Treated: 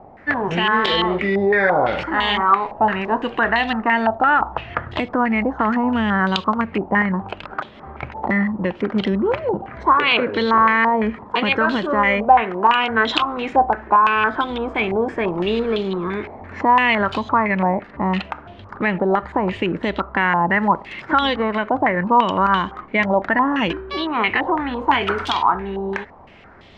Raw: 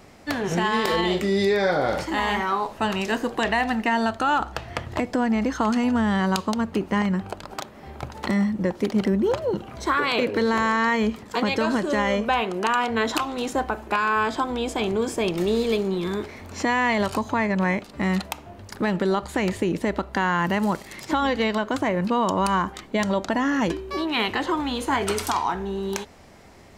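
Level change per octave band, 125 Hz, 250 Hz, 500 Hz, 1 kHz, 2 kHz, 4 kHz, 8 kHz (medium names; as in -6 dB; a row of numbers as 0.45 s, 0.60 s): +1.5 dB, +2.0 dB, +3.0 dB, +7.5 dB, +6.5 dB, +5.0 dB, under -10 dB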